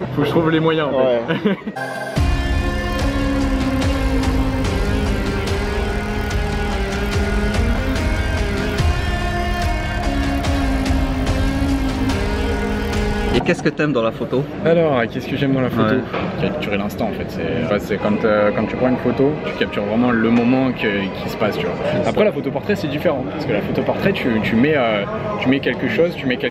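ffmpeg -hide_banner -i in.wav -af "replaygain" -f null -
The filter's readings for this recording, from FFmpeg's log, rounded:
track_gain = -0.5 dB
track_peak = 0.558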